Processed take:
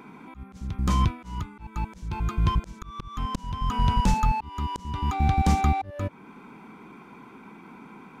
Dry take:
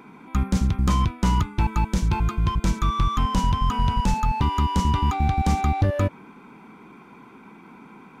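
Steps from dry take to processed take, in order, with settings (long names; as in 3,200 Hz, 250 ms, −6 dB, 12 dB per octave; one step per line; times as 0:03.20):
volume swells 532 ms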